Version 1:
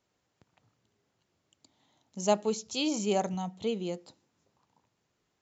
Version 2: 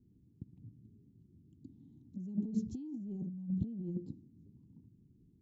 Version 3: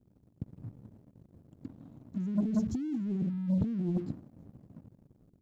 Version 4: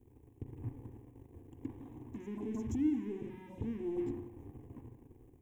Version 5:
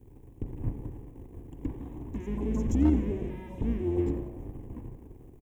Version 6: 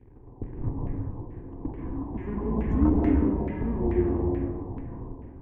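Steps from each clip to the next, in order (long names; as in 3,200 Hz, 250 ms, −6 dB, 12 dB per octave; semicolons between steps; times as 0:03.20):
inverse Chebyshev low-pass filter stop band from 560 Hz, stop band 40 dB; brickwall limiter −37.5 dBFS, peak gain reduction 11 dB; compressor whose output falls as the input rises −48 dBFS, ratio −0.5; level +12 dB
leveller curve on the samples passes 2; level +1.5 dB
brickwall limiter −33 dBFS, peak gain reduction 11.5 dB; phaser with its sweep stopped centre 910 Hz, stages 8; convolution reverb RT60 0.80 s, pre-delay 33 ms, DRR 7.5 dB; level +8 dB
sub-octave generator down 2 octaves, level +1 dB; gain into a clipping stage and back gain 23 dB; echo with shifted repeats 90 ms, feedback 50%, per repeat +97 Hz, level −19 dB; level +7 dB
dense smooth reverb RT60 1.6 s, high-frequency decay 1×, pre-delay 120 ms, DRR −2.5 dB; auto-filter low-pass saw down 2.3 Hz 800–2,100 Hz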